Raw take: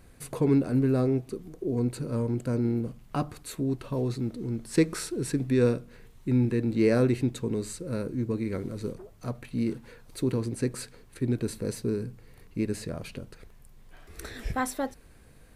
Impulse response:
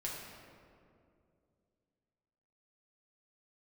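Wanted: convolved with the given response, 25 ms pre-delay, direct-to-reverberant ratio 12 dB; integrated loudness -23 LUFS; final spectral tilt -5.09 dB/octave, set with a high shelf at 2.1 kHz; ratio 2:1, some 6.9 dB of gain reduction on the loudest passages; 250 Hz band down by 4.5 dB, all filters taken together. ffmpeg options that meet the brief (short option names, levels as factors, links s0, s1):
-filter_complex "[0:a]equalizer=f=250:t=o:g=-5.5,highshelf=f=2100:g=6.5,acompressor=threshold=0.0251:ratio=2,asplit=2[s0][s1];[1:a]atrim=start_sample=2205,adelay=25[s2];[s1][s2]afir=irnorm=-1:irlink=0,volume=0.224[s3];[s0][s3]amix=inputs=2:normalize=0,volume=3.76"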